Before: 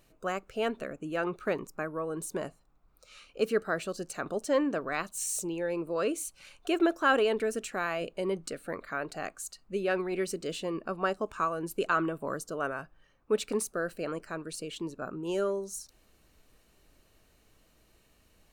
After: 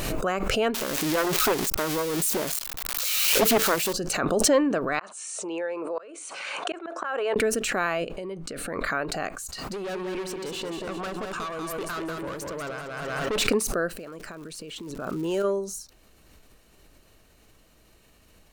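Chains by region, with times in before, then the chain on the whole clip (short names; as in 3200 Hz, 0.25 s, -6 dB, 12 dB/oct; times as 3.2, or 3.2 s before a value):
0.74–3.93 switching spikes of -23 dBFS + Doppler distortion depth 0.8 ms
4.99–7.36 three-band isolator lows -20 dB, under 470 Hz, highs -12 dB, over 2200 Hz + flipped gate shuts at -26 dBFS, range -32 dB + brick-wall FIR band-pass 160–9800 Hz
8.04–8.86 high shelf 12000 Hz -9.5 dB + compressor 5:1, threshold -38 dBFS
9.52–13.46 HPF 210 Hz 6 dB/oct + tube stage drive 36 dB, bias 0.45 + feedback echo 0.19 s, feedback 33%, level -5.5 dB
13.96–15.43 compressor, threshold -42 dBFS + crackle 350/s -52 dBFS
whole clip: dynamic EQ 9000 Hz, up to -4 dB, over -52 dBFS, Q 0.98; backwards sustainer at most 24 dB/s; gain +5.5 dB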